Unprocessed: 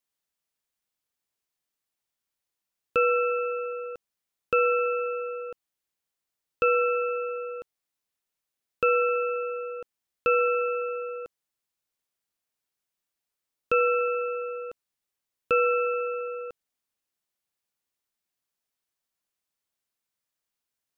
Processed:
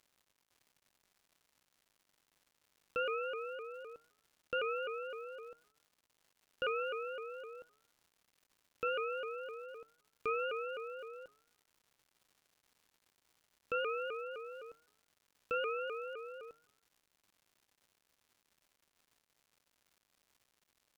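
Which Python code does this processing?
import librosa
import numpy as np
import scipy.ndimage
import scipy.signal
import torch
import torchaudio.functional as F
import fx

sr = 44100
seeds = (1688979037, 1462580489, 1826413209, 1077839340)

y = fx.comb_fb(x, sr, f0_hz=150.0, decay_s=0.8, harmonics='all', damping=0.0, mix_pct=70)
y = fx.dmg_crackle(y, sr, seeds[0], per_s=270.0, level_db=-54.0)
y = fx.vibrato_shape(y, sr, shape='saw_up', rate_hz=3.9, depth_cents=160.0)
y = F.gain(torch.from_numpy(y), -4.0).numpy()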